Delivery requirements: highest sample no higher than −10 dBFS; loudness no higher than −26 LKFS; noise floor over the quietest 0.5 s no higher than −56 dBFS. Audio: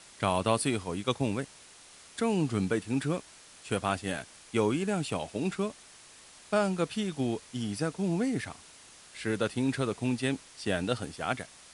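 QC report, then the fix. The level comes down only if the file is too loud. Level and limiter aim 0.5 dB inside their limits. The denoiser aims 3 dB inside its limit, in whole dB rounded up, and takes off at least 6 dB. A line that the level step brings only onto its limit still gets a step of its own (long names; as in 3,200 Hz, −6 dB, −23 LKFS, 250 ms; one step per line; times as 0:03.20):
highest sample −10.5 dBFS: in spec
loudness −31.5 LKFS: in spec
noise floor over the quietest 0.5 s −54 dBFS: out of spec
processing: broadband denoise 6 dB, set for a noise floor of −54 dBFS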